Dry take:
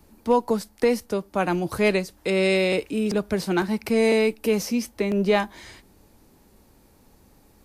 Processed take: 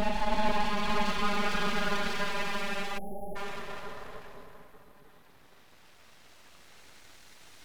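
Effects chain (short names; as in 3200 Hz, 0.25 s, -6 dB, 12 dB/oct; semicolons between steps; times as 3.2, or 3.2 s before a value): Paulstretch 25×, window 0.10 s, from 5.29; full-wave rectifier; spectral delete 2.98–3.36, 880–10000 Hz; gain -8 dB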